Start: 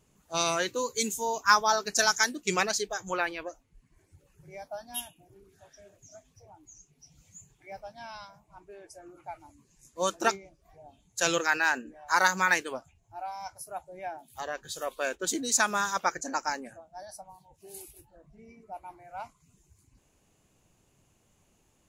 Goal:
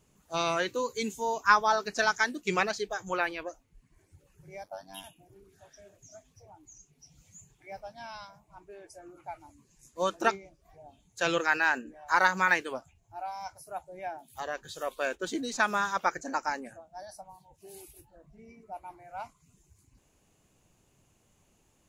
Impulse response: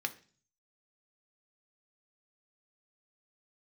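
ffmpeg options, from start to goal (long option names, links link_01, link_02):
-filter_complex "[0:a]aeval=exprs='0.473*(cos(1*acos(clip(val(0)/0.473,-1,1)))-cos(1*PI/2))+0.0211*(cos(2*acos(clip(val(0)/0.473,-1,1)))-cos(2*PI/2))':channel_layout=same,asettb=1/sr,asplit=3[link_01][link_02][link_03];[link_01]atrim=end=4.634[link_04];[link_02]atrim=start=4.63:end=5.04,asetpts=PTS-STARTPTS,afade=type=in:duration=0.004:curve=qsin,afade=type=out:start_time=0.406:duration=0.004:curve=qsin,aeval=exprs='val(0)*sin(2*PI*48*n/s)':channel_layout=same[link_05];[link_03]atrim=start=5.036[link_06];[link_04][link_05]acrossfade=duration=0.004:curve1=hsin:curve2=qsin[link_07];[link_07][link_06]acrossfade=duration=0.004:curve1=qsin:curve2=hsin,acrossover=split=4000[link_08][link_09];[link_09]acompressor=threshold=-47dB:ratio=4:attack=1:release=60[link_10];[link_08][link_10]amix=inputs=2:normalize=0"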